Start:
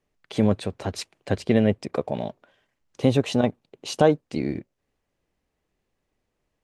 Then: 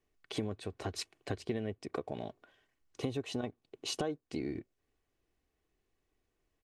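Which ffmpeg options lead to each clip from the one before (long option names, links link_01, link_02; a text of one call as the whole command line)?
ffmpeg -i in.wav -af "acompressor=threshold=-29dB:ratio=4,equalizer=frequency=750:width_type=o:width=0.68:gain=-3,aecho=1:1:2.7:0.41,volume=-4.5dB" out.wav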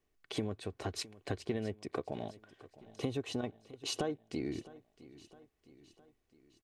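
ffmpeg -i in.wav -af "aecho=1:1:661|1322|1983|2644:0.112|0.0606|0.0327|0.0177" out.wav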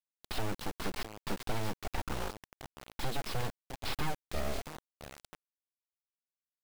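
ffmpeg -i in.wav -af "aresample=11025,aeval=exprs='abs(val(0))':channel_layout=same,aresample=44100,acrusher=bits=7:mix=0:aa=0.000001,asoftclip=type=tanh:threshold=-30.5dB,volume=7dB" out.wav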